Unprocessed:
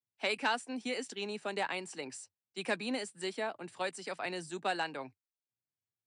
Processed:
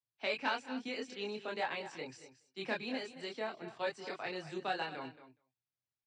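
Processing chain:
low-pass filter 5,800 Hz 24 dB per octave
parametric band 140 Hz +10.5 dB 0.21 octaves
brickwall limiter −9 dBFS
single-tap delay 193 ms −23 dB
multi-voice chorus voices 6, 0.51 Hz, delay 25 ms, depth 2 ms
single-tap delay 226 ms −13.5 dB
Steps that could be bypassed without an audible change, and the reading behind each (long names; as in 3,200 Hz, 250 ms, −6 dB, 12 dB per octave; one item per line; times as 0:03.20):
brickwall limiter −9 dBFS: peak of its input −18.0 dBFS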